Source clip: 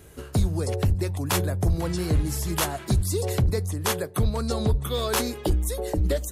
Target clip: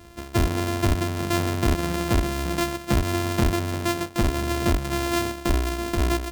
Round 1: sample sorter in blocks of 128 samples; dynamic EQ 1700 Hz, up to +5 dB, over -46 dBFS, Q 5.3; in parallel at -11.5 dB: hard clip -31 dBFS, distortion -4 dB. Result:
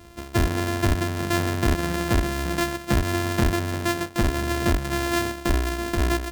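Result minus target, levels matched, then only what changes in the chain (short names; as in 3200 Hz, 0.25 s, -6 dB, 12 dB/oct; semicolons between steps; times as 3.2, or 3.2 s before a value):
2000 Hz band +2.5 dB
remove: dynamic EQ 1700 Hz, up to +5 dB, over -46 dBFS, Q 5.3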